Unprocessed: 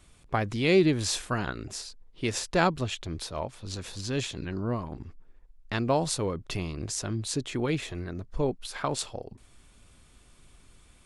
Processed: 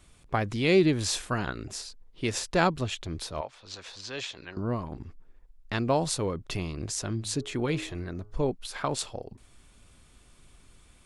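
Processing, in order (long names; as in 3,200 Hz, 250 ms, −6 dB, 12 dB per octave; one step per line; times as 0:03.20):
0:03.41–0:04.57: three-way crossover with the lows and the highs turned down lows −16 dB, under 490 Hz, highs −21 dB, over 6,800 Hz
0:07.18–0:08.36: hum removal 104.9 Hz, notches 14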